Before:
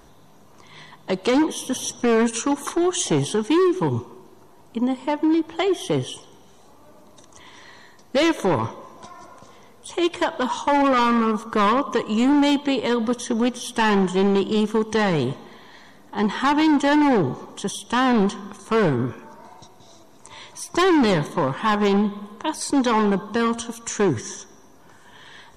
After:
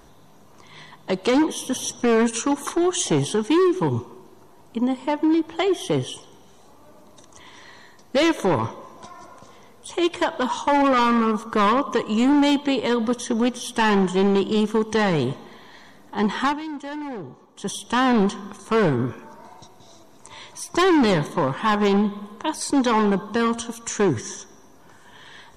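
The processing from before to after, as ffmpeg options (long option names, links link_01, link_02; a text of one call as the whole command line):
ffmpeg -i in.wav -filter_complex "[0:a]asplit=3[link_01][link_02][link_03];[link_01]atrim=end=16.59,asetpts=PTS-STARTPTS,afade=type=out:start_time=16.44:duration=0.15:silence=0.188365[link_04];[link_02]atrim=start=16.59:end=17.55,asetpts=PTS-STARTPTS,volume=-14.5dB[link_05];[link_03]atrim=start=17.55,asetpts=PTS-STARTPTS,afade=type=in:duration=0.15:silence=0.188365[link_06];[link_04][link_05][link_06]concat=n=3:v=0:a=1" out.wav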